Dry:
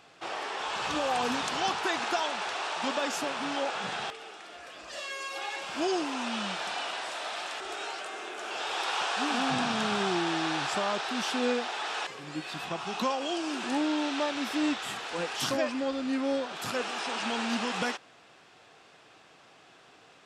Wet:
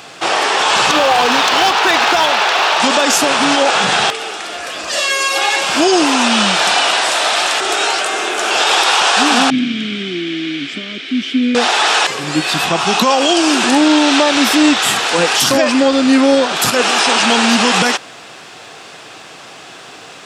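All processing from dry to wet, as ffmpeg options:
-filter_complex "[0:a]asettb=1/sr,asplit=3[a][b][c];[a]atrim=end=0.914[d];[b]atrim=start=0.91:end=2.8,asetpts=PTS-STARTPTS,afade=t=in:d=0.004:c=qsin,afade=t=out:st=1.886:d=0.004:c=qsin,highpass=340,lowpass=4.6k,aeval=exprs='clip(val(0),-1,0.0398)':c=same[e];[c]atrim=start=2.796[f];[d][e]acrossfade=d=0.004:c1=hsin:c2=qsin[g];[g][f]acrossfade=d=0.004:c1=qsin:c2=hsin,asettb=1/sr,asplit=3[h][i][j];[h]atrim=end=9.504[k];[i]atrim=start=9.5:end=11.55,asetpts=PTS-STARTPTS,afade=t=in:d=0.004:c=qsin,afade=t=out:st=2.046:d=0.004:c=qsin,asplit=3[l][m][n];[l]bandpass=f=270:t=q:w=8,volume=0dB[o];[m]bandpass=f=2.29k:t=q:w=8,volume=-6dB[p];[n]bandpass=f=3.01k:t=q:w=8,volume=-9dB[q];[o][p][q]amix=inputs=3:normalize=0,equalizer=f=64:t=o:w=2.8:g=9.5[r];[j]atrim=start=11.546[s];[k][r]acrossfade=d=0.004:c1=hsin:c2=qsin[t];[t][s]acrossfade=d=0.004:c1=qsin:c2=hsin,highpass=75,highshelf=f=4.6k:g=7.5,alimiter=level_in=21.5dB:limit=-1dB:release=50:level=0:latency=1,volume=-1.5dB"

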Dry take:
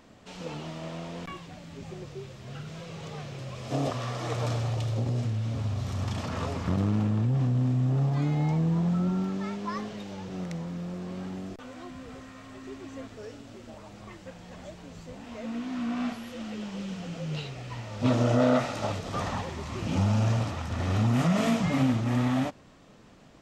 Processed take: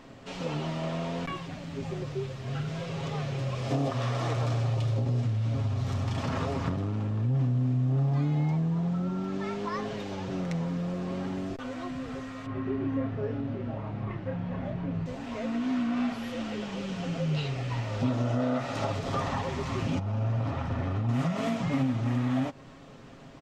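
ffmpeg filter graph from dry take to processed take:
-filter_complex "[0:a]asettb=1/sr,asplit=3[a][b][c];[a]atrim=end=12.464[d];[b]atrim=start=12.46:end=15.06,asetpts=PTS-STARTPTS,afade=t=in:d=0.004:c=qsin,afade=t=out:st=2.596:d=0.004:c=qsin,lowpass=2.2k,equalizer=f=140:t=o:w=1.7:g=8.5,asplit=2[e][f];[f]adelay=29,volume=-4dB[g];[e][g]amix=inputs=2:normalize=0,atrim=end_sample=114660[h];[c]atrim=start=15.056[i];[d][h]acrossfade=d=0.004:c1=hsin:c2=qsin[j];[j][i]acrossfade=d=0.004:c1=qsin:c2=hsin,asettb=1/sr,asplit=3[k][l][m];[k]atrim=end=19.994[n];[l]atrim=start=19.99:end=21.09,asetpts=PTS-STARTPTS,afade=t=in:d=0.004:c=qsin,afade=t=out:st=1.096:d=0.004:c=qsin,lowpass=f=1.8k:p=1,acompressor=threshold=-26dB:ratio=5:attack=3.2:release=140:knee=1:detection=peak[o];[m]atrim=start=21.086[p];[n][o]acrossfade=d=0.004:c1=hsin:c2=qsin[q];[q][p]acrossfade=d=0.004:c1=qsin:c2=hsin,highshelf=f=5.9k:g=-8.5,acompressor=threshold=-32dB:ratio=6,aecho=1:1:7.4:0.45,volume=5dB"

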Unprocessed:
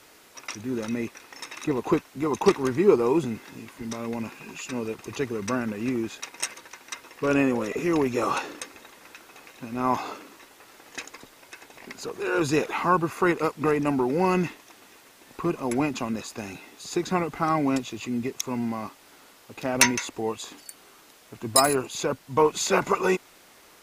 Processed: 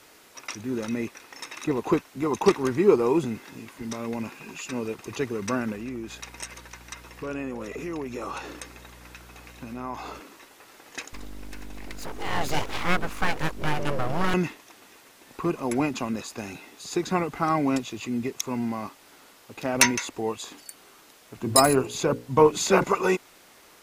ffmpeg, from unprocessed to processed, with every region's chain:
-filter_complex "[0:a]asettb=1/sr,asplit=3[a][b][c];[a]atrim=end=5.754[d];[b]atrim=start=5.75:end=10.2,asetpts=PTS-STARTPTS,afade=t=in:d=0.004:c=qsin,afade=t=out:st=4.446:d=0.004:c=qsin,acompressor=threshold=-34dB:ratio=2.5:attack=3.2:release=140:knee=1:detection=peak,aeval=exprs='val(0)+0.00355*(sin(2*PI*60*n/s)+sin(2*PI*2*60*n/s)/2+sin(2*PI*3*60*n/s)/3+sin(2*PI*4*60*n/s)/4+sin(2*PI*5*60*n/s)/5)':c=same[e];[c]atrim=start=10.196[f];[d][e]acrossfade=d=0.004:c1=hsin:c2=qsin[g];[g][f]acrossfade=d=0.004:c1=qsin:c2=hsin,asettb=1/sr,asplit=3[h][i][j];[h]atrim=end=11.134[k];[i]atrim=start=11.13:end=14.34,asetpts=PTS-STARTPTS,afade=t=in:d=0.004:c=qsin,afade=t=out:st=3.206:d=0.004:c=qsin,aeval=exprs='val(0)+0.0178*(sin(2*PI*50*n/s)+sin(2*PI*2*50*n/s)/2+sin(2*PI*3*50*n/s)/3+sin(2*PI*4*50*n/s)/4+sin(2*PI*5*50*n/s)/5)':c=same,aeval=exprs='abs(val(0))':c=same[l];[j]atrim=start=14.336[m];[k][l]acrossfade=d=0.004:c1=hsin:c2=qsin[n];[n][m]acrossfade=d=0.004:c1=qsin:c2=hsin,asettb=1/sr,asplit=3[o][p][q];[o]atrim=end=21.374[r];[p]atrim=start=21.37:end=22.84,asetpts=PTS-STARTPTS,afade=t=in:d=0.004:c=qsin,afade=t=out:st=1.466:d=0.004:c=qsin,lowshelf=f=470:g=7,bandreject=f=60:t=h:w=6,bandreject=f=120:t=h:w=6,bandreject=f=180:t=h:w=6,bandreject=f=240:t=h:w=6,bandreject=f=300:t=h:w=6,bandreject=f=360:t=h:w=6,bandreject=f=420:t=h:w=6,bandreject=f=480:t=h:w=6,bandreject=f=540:t=h:w=6,bandreject=f=600:t=h:w=6[s];[q]atrim=start=22.836[t];[r][s]acrossfade=d=0.004:c1=hsin:c2=qsin[u];[u][t]acrossfade=d=0.004:c1=qsin:c2=hsin"

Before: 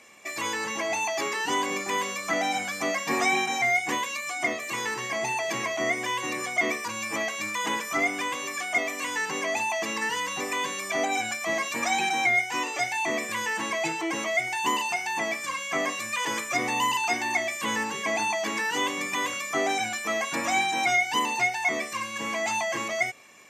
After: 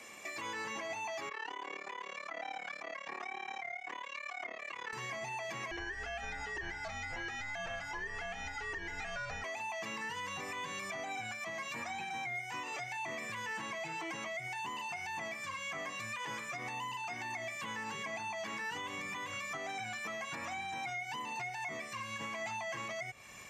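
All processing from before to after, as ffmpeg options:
-filter_complex "[0:a]asettb=1/sr,asplit=3[a][b][c];[a]atrim=end=1.294[d];[b]atrim=start=1.29:end=4.93,asetpts=PTS-STARTPTS,afade=t=in:d=0.004:c=qsin,afade=t=out:st=3.636:d=0.004:c=qsin,tremolo=f=36:d=0.919,highpass=400,lowpass=3k[e];[c]atrim=start=4.926[f];[d][e]acrossfade=d=0.004:c1=hsin:c2=qsin[g];[g][f]acrossfade=d=0.004:c1=qsin:c2=hsin,asettb=1/sr,asplit=3[h][i][j];[h]atrim=end=5.714[k];[i]atrim=start=5.71:end=9.44,asetpts=PTS-STARTPTS,afade=t=in:d=0.004:c=qsin,afade=t=out:st=3.726:d=0.004:c=qsin,lowpass=4.3k,afreqshift=-310[l];[j]atrim=start=9.436[m];[k][l]acrossfade=d=0.004:c1=hsin:c2=qsin[n];[n][m]acrossfade=d=0.004:c1=qsin:c2=hsin,asubboost=boost=8.5:cutoff=100,acrossover=split=240|660|2500|5800[o][p][q][r][s];[o]acompressor=threshold=-44dB:ratio=4[t];[p]acompressor=threshold=-40dB:ratio=4[u];[q]acompressor=threshold=-29dB:ratio=4[v];[r]acompressor=threshold=-41dB:ratio=4[w];[s]acompressor=threshold=-53dB:ratio=4[x];[t][u][v][w][x]amix=inputs=5:normalize=0,alimiter=level_in=10dB:limit=-24dB:level=0:latency=1:release=344,volume=-10dB,volume=1.5dB"

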